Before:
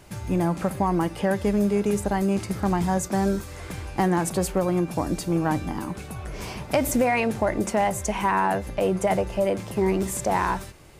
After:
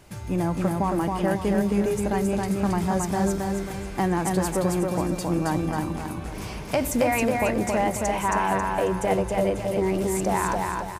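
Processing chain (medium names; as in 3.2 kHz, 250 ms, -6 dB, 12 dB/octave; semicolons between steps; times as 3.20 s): feedback delay 271 ms, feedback 40%, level -3 dB; trim -2 dB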